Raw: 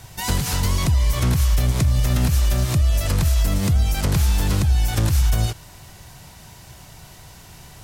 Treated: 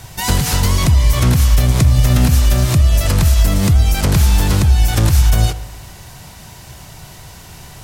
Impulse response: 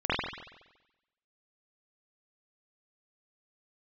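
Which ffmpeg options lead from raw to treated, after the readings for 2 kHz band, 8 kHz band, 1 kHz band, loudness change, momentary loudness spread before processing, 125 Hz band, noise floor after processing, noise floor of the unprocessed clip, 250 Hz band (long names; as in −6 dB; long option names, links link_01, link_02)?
+6.5 dB, +6.5 dB, +6.5 dB, +6.5 dB, 3 LU, +6.5 dB, −37 dBFS, −44 dBFS, +7.0 dB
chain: -filter_complex "[0:a]asplit=2[link_01][link_02];[1:a]atrim=start_sample=2205,asetrate=36603,aresample=44100[link_03];[link_02][link_03]afir=irnorm=-1:irlink=0,volume=-28dB[link_04];[link_01][link_04]amix=inputs=2:normalize=0,volume=6dB"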